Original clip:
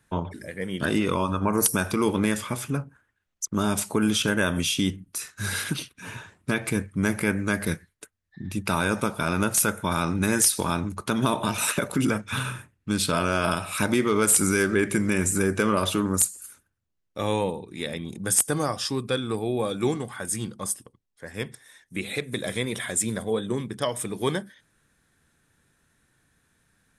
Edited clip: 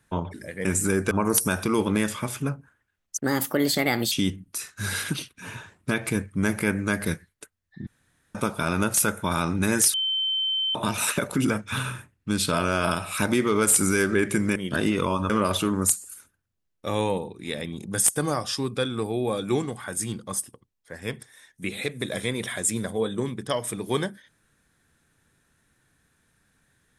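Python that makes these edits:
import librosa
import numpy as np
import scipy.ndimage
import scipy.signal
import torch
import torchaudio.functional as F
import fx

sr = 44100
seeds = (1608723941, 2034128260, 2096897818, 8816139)

y = fx.edit(x, sr, fx.swap(start_s=0.65, length_s=0.74, other_s=15.16, other_length_s=0.46),
    fx.speed_span(start_s=3.45, length_s=1.27, speed=1.34),
    fx.room_tone_fill(start_s=8.47, length_s=0.48),
    fx.bleep(start_s=10.54, length_s=0.81, hz=3090.0, db=-22.5), tone=tone)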